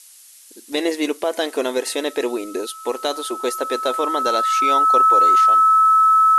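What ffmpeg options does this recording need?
-af "bandreject=f=1300:w=30,afftdn=nr=19:nf=-44"

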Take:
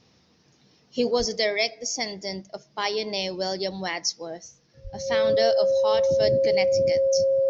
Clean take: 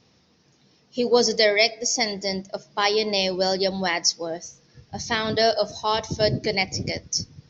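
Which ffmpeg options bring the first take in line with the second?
-filter_complex "[0:a]bandreject=f=540:w=30,asplit=3[s0][s1][s2];[s0]afade=t=out:st=1.18:d=0.02[s3];[s1]highpass=f=140:w=0.5412,highpass=f=140:w=1.3066,afade=t=in:st=1.18:d=0.02,afade=t=out:st=1.3:d=0.02[s4];[s2]afade=t=in:st=1.3:d=0.02[s5];[s3][s4][s5]amix=inputs=3:normalize=0,asplit=3[s6][s7][s8];[s6]afade=t=out:st=4.83:d=0.02[s9];[s7]highpass=f=140:w=0.5412,highpass=f=140:w=1.3066,afade=t=in:st=4.83:d=0.02,afade=t=out:st=4.95:d=0.02[s10];[s8]afade=t=in:st=4.95:d=0.02[s11];[s9][s10][s11]amix=inputs=3:normalize=0,asetnsamples=n=441:p=0,asendcmd='1.11 volume volume 5.5dB',volume=1"

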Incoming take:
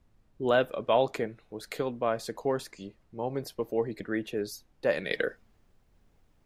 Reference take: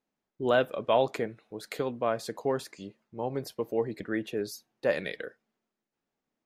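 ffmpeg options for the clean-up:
-af "agate=range=0.0891:threshold=0.00141,asetnsamples=n=441:p=0,asendcmd='5.11 volume volume -9.5dB',volume=1"

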